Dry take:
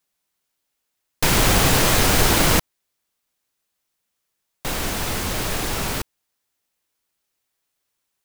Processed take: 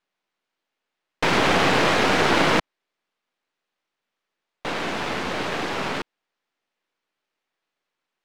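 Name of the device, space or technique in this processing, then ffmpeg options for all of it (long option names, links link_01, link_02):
crystal radio: -af "highpass=220,lowpass=3000,aeval=exprs='if(lt(val(0),0),0.447*val(0),val(0))':channel_layout=same,volume=4.5dB"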